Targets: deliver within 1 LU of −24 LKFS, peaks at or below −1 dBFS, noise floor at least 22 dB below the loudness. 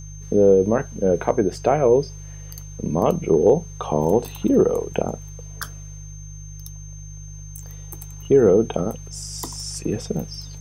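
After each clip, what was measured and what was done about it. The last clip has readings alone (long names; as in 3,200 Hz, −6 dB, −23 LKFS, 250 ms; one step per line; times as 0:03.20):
mains hum 50 Hz; hum harmonics up to 150 Hz; level of the hum −34 dBFS; interfering tone 6,300 Hz; level of the tone −43 dBFS; integrated loudness −20.5 LKFS; sample peak −4.5 dBFS; target loudness −24.0 LKFS
→ hum removal 50 Hz, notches 3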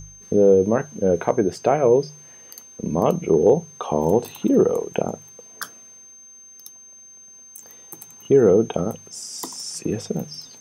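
mains hum none found; interfering tone 6,300 Hz; level of the tone −43 dBFS
→ notch filter 6,300 Hz, Q 30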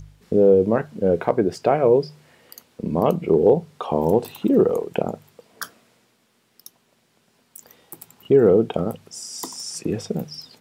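interfering tone none found; integrated loudness −20.5 LKFS; sample peak −4.5 dBFS; target loudness −24.0 LKFS
→ level −3.5 dB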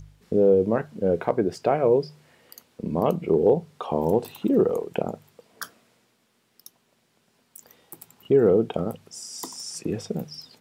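integrated loudness −24.0 LKFS; sample peak −8.0 dBFS; background noise floor −68 dBFS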